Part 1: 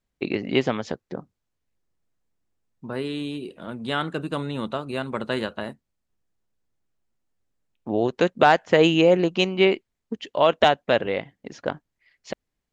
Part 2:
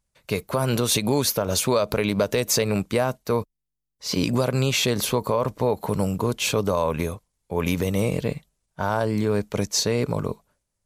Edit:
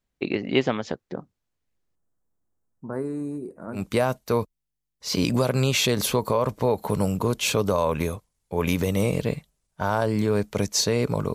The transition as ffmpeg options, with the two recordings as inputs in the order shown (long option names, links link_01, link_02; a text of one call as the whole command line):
ffmpeg -i cue0.wav -i cue1.wav -filter_complex "[0:a]asettb=1/sr,asplit=3[link_01][link_02][link_03];[link_01]atrim=end=1.954[link_04];[link_02]atrim=start=1.95:end=3.86,asetpts=PTS-STARTPTS,afade=type=in:duration=0.004:curve=qsin,afade=type=out:start_time=1.906:duration=0.004:curve=qsin,asuperstop=centerf=3200:order=4:qfactor=0.6[link_05];[link_03]atrim=start=3.856[link_06];[link_04][link_05]acrossfade=duration=0.004:curve1=hsin:curve2=qsin[link_07];[link_07][link_06]acrossfade=duration=0.004:curve1=qsin:curve2=hsin,apad=whole_dur=11.34,atrim=end=11.34,atrim=end=3.86,asetpts=PTS-STARTPTS[link_08];[1:a]atrim=start=2.71:end=10.33,asetpts=PTS-STARTPTS[link_09];[link_08][link_09]acrossfade=duration=0.14:curve1=tri:curve2=tri" out.wav